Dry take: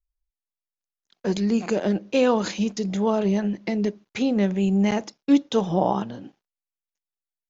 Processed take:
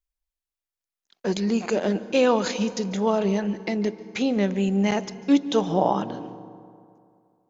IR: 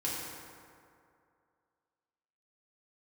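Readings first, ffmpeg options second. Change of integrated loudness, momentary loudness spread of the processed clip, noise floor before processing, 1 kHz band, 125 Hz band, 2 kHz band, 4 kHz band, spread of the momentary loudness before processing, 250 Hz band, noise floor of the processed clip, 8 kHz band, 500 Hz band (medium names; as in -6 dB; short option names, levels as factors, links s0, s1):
-0.5 dB, 8 LU, under -85 dBFS, +1.0 dB, -2.0 dB, +1.5 dB, +1.5 dB, 8 LU, -1.5 dB, under -85 dBFS, no reading, +0.5 dB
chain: -filter_complex "[0:a]lowshelf=f=220:g=-6.5,asplit=2[s0][s1];[1:a]atrim=start_sample=2205,lowshelf=f=300:g=9,adelay=143[s2];[s1][s2]afir=irnorm=-1:irlink=0,volume=0.0841[s3];[s0][s3]amix=inputs=2:normalize=0,volume=1.19"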